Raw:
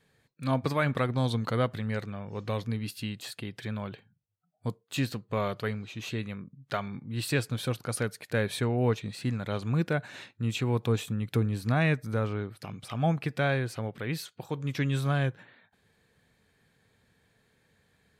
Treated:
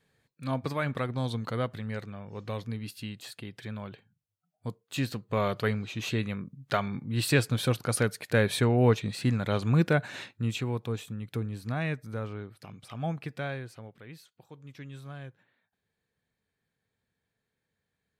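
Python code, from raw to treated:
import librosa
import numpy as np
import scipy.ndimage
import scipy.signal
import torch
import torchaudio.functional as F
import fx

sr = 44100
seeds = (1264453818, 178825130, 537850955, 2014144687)

y = fx.gain(x, sr, db=fx.line((4.67, -3.5), (5.68, 4.0), (10.22, 4.0), (10.85, -6.0), (13.31, -6.0), (14.21, -15.5)))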